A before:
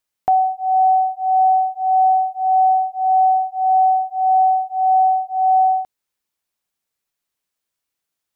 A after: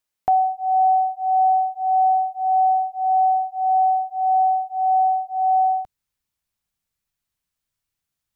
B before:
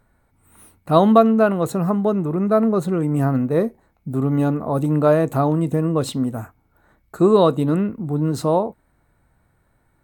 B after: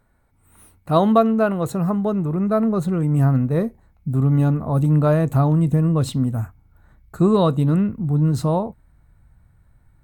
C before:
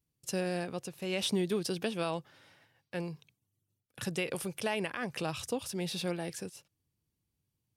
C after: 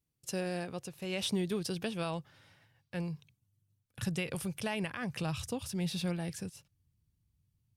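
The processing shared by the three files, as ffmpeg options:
ffmpeg -i in.wav -af "asubboost=boost=5:cutoff=160,volume=-2dB" out.wav

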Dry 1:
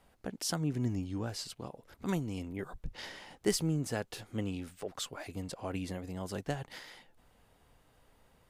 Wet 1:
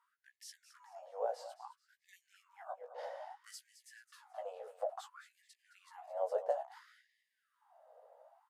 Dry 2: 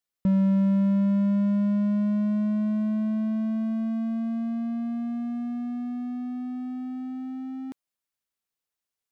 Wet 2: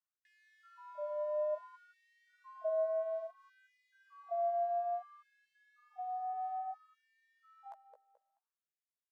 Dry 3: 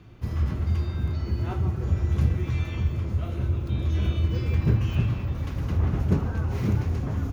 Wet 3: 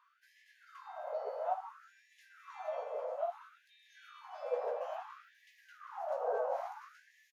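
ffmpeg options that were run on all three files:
ffmpeg -i in.wav -filter_complex "[0:a]firequalizer=gain_entry='entry(270,0);entry(640,10);entry(1000,-4);entry(2300,-21)':delay=0.05:min_phase=1,acrossover=split=350|3000[link_01][link_02][link_03];[link_02]acompressor=threshold=-34dB:ratio=6[link_04];[link_01][link_04][link_03]amix=inputs=3:normalize=0,aresample=32000,aresample=44100,asplit=2[link_05][link_06];[link_06]adelay=16,volume=-5dB[link_07];[link_05][link_07]amix=inputs=2:normalize=0,asplit=2[link_08][link_09];[link_09]aecho=0:1:216|432|648:0.224|0.0694|0.0215[link_10];[link_08][link_10]amix=inputs=2:normalize=0,afftfilt=real='re*gte(b*sr/1024,430*pow(1700/430,0.5+0.5*sin(2*PI*0.59*pts/sr)))':imag='im*gte(b*sr/1024,430*pow(1700/430,0.5+0.5*sin(2*PI*0.59*pts/sr)))':win_size=1024:overlap=0.75,volume=3dB" out.wav

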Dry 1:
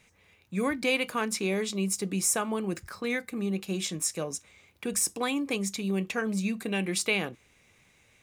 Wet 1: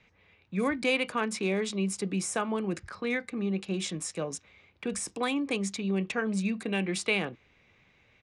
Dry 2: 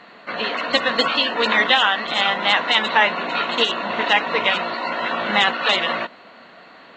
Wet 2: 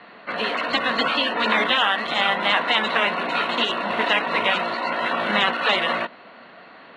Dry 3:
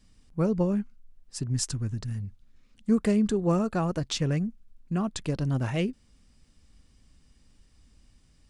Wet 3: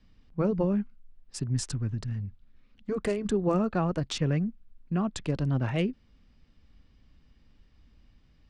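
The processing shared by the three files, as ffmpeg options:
ffmpeg -i in.wav -filter_complex "[0:a]acrossover=split=3200[link_01][link_02];[link_02]acompressor=threshold=-31dB:ratio=4:attack=1:release=60[link_03];[link_01][link_03]amix=inputs=2:normalize=0,acrossover=split=230|1400|4600[link_04][link_05][link_06][link_07];[link_07]aeval=exprs='val(0)*gte(abs(val(0)),0.00596)':channel_layout=same[link_08];[link_04][link_05][link_06][link_08]amix=inputs=4:normalize=0,afftfilt=real='re*lt(hypot(re,im),0.794)':imag='im*lt(hypot(re,im),0.794)':win_size=1024:overlap=0.75,aresample=22050,aresample=44100" out.wav

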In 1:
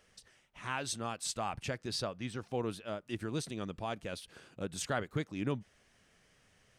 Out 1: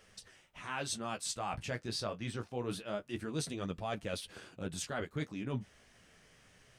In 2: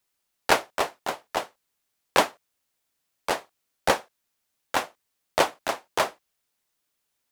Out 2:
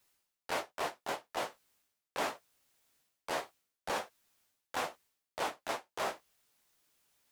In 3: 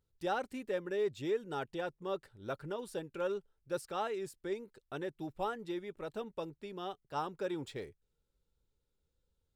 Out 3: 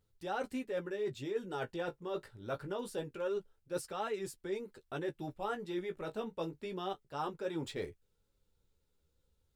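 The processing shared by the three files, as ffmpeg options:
ffmpeg -i in.wav -af "areverse,acompressor=threshold=-38dB:ratio=10,areverse,flanger=delay=9.1:depth=9.5:regen=-25:speed=0.24:shape=triangular,volume=8dB" out.wav

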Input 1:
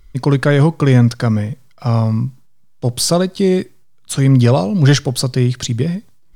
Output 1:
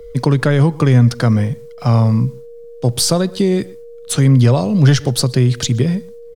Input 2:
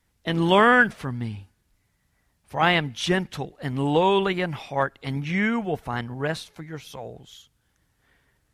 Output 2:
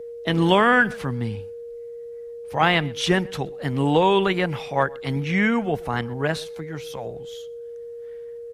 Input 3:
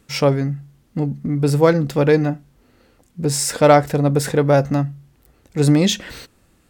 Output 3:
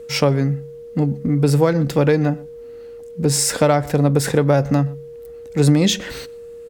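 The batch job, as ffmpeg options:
ffmpeg -i in.wav -filter_complex "[0:a]aeval=exprs='val(0)+0.0158*sin(2*PI*470*n/s)':channel_layout=same,asplit=2[link_01][link_02];[link_02]adelay=122.4,volume=-25dB,highshelf=frequency=4000:gain=-2.76[link_03];[link_01][link_03]amix=inputs=2:normalize=0,acrossover=split=130[link_04][link_05];[link_05]acompressor=threshold=-15dB:ratio=6[link_06];[link_04][link_06]amix=inputs=2:normalize=0,volume=3dB" out.wav

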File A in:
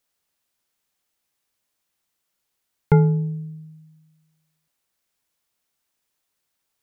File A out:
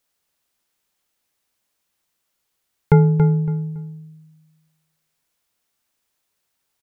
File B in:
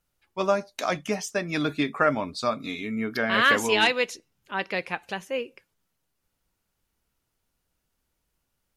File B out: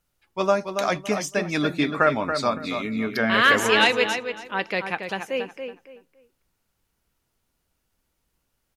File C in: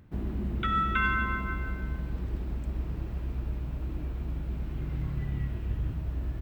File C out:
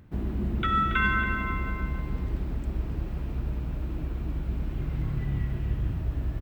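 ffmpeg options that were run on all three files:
ffmpeg -i in.wav -filter_complex "[0:a]asplit=2[link_01][link_02];[link_02]adelay=280,lowpass=frequency=3000:poles=1,volume=-7dB,asplit=2[link_03][link_04];[link_04]adelay=280,lowpass=frequency=3000:poles=1,volume=0.25,asplit=2[link_05][link_06];[link_06]adelay=280,lowpass=frequency=3000:poles=1,volume=0.25[link_07];[link_01][link_03][link_05][link_07]amix=inputs=4:normalize=0,volume=2.5dB" out.wav

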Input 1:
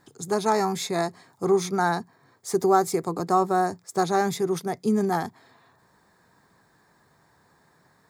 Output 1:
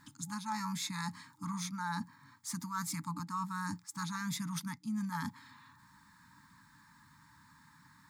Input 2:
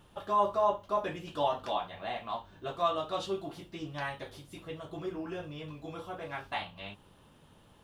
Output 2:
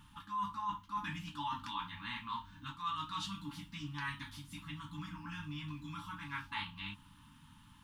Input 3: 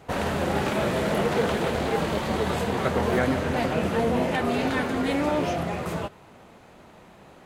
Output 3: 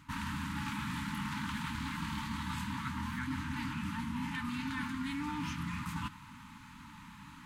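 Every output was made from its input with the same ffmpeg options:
ffmpeg -i in.wav -af "afftfilt=real='re*(1-between(b*sr/4096,310,840))':imag='im*(1-between(b*sr/4096,310,840))':win_size=4096:overlap=0.75,areverse,acompressor=threshold=-37dB:ratio=5,areverse,volume=1dB" out.wav

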